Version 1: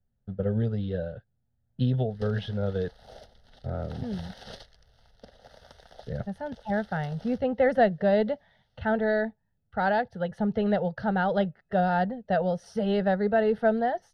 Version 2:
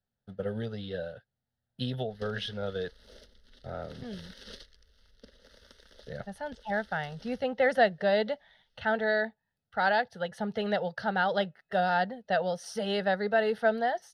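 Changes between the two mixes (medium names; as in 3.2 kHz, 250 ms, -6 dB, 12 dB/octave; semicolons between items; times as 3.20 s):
speech: add tilt EQ +3.5 dB/octave; background: add static phaser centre 310 Hz, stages 4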